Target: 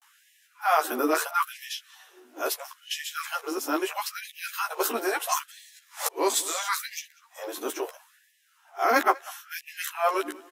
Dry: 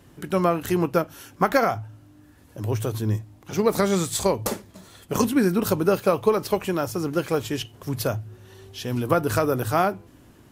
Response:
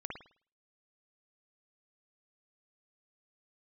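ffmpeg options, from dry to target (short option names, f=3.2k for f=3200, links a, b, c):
-filter_complex "[0:a]areverse,equalizer=f=540:w=2.5:g=-9,bandreject=f=4.5k:w=16,acrossover=split=340|1400[a][b][c];[a]aeval=exprs='0.0531*(abs(mod(val(0)/0.0531+3,4)-2)-1)':c=same[d];[d][b][c]amix=inputs=3:normalize=0,asplit=2[e][f];[f]adelay=13,volume=-3.5dB[g];[e][g]amix=inputs=2:normalize=0,asplit=2[h][i];[i]adelay=194,lowpass=f=4.1k:p=1,volume=-21.5dB,asplit=2[j][k];[k]adelay=194,lowpass=f=4.1k:p=1,volume=0.31[l];[j][l]amix=inputs=2:normalize=0[m];[h][m]amix=inputs=2:normalize=0,afftfilt=real='re*gte(b*sr/1024,240*pow(1700/240,0.5+0.5*sin(2*PI*0.75*pts/sr)))':imag='im*gte(b*sr/1024,240*pow(1700/240,0.5+0.5*sin(2*PI*0.75*pts/sr)))':win_size=1024:overlap=0.75"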